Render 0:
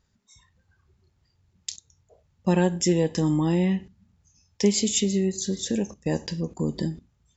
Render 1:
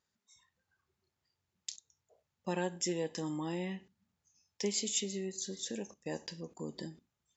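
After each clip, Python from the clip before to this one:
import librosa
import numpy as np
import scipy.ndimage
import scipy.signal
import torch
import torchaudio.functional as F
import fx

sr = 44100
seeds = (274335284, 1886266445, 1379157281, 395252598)

y = fx.highpass(x, sr, hz=490.0, slope=6)
y = y * librosa.db_to_amplitude(-8.5)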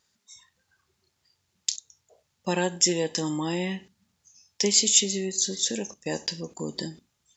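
y = fx.peak_eq(x, sr, hz=5600.0, db=7.0, octaves=2.2)
y = y * librosa.db_to_amplitude(8.5)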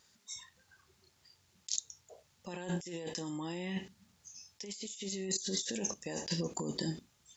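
y = fx.over_compress(x, sr, threshold_db=-36.0, ratio=-1.0)
y = y * librosa.db_to_amplitude(-3.5)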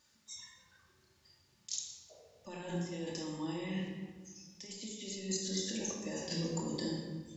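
y = fx.room_shoebox(x, sr, seeds[0], volume_m3=1500.0, walls='mixed', distance_m=2.5)
y = y * librosa.db_to_amplitude(-5.5)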